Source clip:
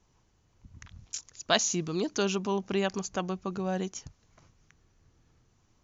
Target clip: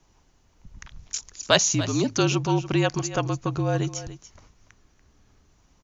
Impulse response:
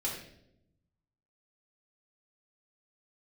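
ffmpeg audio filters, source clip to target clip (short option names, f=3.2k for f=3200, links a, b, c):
-af "acontrast=27,afreqshift=-49,aecho=1:1:288:0.2,volume=1.5dB"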